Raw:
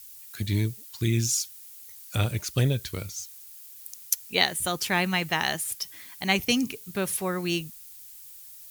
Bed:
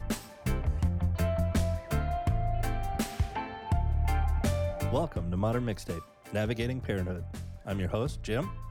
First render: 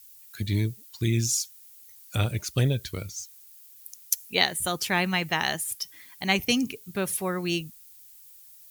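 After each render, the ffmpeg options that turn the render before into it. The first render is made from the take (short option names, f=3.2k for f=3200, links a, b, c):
-af "afftdn=nr=6:nf=-46"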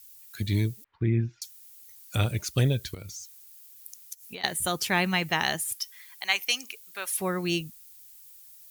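-filter_complex "[0:a]asettb=1/sr,asplit=3[a][b][c];[a]atrim=end=0.844[d];[b]atrim=start=0.84:end=1.42,asetpts=PTS-STARTPTS,afade=t=in:d=0.004:c=qsin,afade=t=out:st=0.576:d=0.004:c=qsin,lowpass=f=1.9k:w=0.5412,lowpass=f=1.9k:w=1.3066[e];[c]atrim=start=1.416[f];[d][e]acrossfade=d=0.004:c1=hsin:c2=qsin[g];[g][f]acrossfade=d=0.004:c1=qsin:c2=hsin,asettb=1/sr,asplit=3[h][i][j];[h]atrim=end=2.944[k];[i]atrim=start=2.94:end=4.44,asetpts=PTS-STARTPTS,afade=t=in:d=0.004:c=qsin,afade=t=out:st=1.496:d=0.004:c=qsin,acompressor=threshold=-36dB:ratio=10:attack=3.2:release=140:knee=1:detection=peak[l];[j]atrim=start=4.436[m];[k][l]acrossfade=d=0.004:c1=hsin:c2=qsin[n];[n][m]acrossfade=d=0.004:c1=qsin:c2=hsin,asettb=1/sr,asplit=3[o][p][q];[o]atrim=end=5.734[r];[p]atrim=start=5.73:end=7.19,asetpts=PTS-STARTPTS,afade=t=in:d=0.004:c=qsin,afade=t=out:st=1.456:d=0.004:c=qsin,highpass=980[s];[q]atrim=start=7.186[t];[r][s]acrossfade=d=0.004:c1=hsin:c2=qsin[u];[u][t]acrossfade=d=0.004:c1=qsin:c2=hsin"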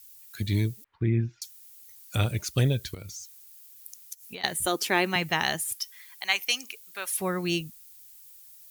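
-filter_complex "[0:a]asettb=1/sr,asplit=3[a][b][c];[a]atrim=end=4.664[d];[b]atrim=start=4.66:end=5.16,asetpts=PTS-STARTPTS,afade=t=in:d=0.004:c=qsin,afade=t=out:st=0.496:d=0.004:c=qsin,highpass=f=310:t=q:w=2[e];[c]atrim=start=5.156[f];[d][e]acrossfade=d=0.004:c1=hsin:c2=qsin[g];[g][f]acrossfade=d=0.004:c1=qsin:c2=hsin"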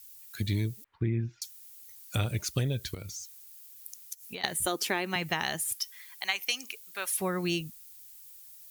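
-af "acompressor=threshold=-25dB:ratio=10"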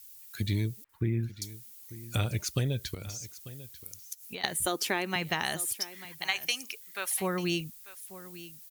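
-af "aecho=1:1:893:0.15"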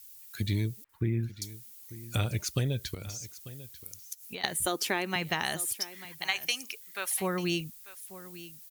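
-af anull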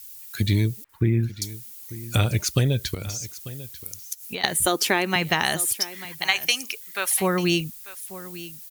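-af "volume=8.5dB,alimiter=limit=-3dB:level=0:latency=1"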